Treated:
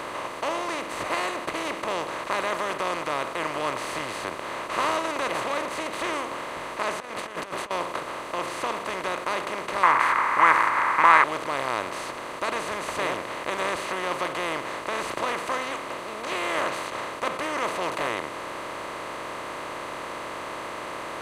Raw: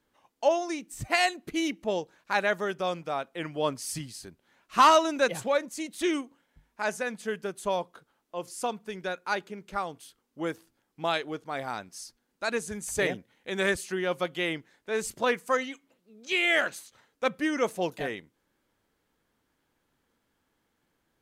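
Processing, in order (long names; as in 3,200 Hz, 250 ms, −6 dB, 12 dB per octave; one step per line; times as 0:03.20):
compressor on every frequency bin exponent 0.2
0:07.00–0:07.71: compressor whose output falls as the input rises −21 dBFS, ratio −0.5
0:09.83–0:11.24: flat-topped bell 1,400 Hz +14.5 dB
level −12.5 dB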